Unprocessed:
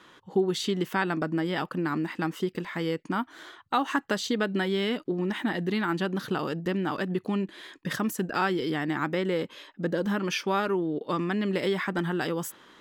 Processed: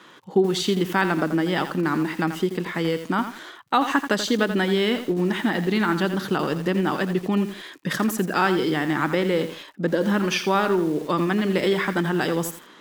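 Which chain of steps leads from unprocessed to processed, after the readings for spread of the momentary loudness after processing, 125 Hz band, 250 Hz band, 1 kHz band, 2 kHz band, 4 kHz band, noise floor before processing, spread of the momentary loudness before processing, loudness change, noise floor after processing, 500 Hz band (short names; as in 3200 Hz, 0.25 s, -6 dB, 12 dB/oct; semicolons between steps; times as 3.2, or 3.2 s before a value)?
5 LU, +5.5 dB, +6.0 dB, +6.0 dB, +6.0 dB, +6.0 dB, -57 dBFS, 5 LU, +6.0 dB, -48 dBFS, +6.0 dB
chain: HPF 120 Hz 24 dB/oct; crackle 82/s -54 dBFS; lo-fi delay 84 ms, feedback 35%, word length 7-bit, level -9.5 dB; gain +5.5 dB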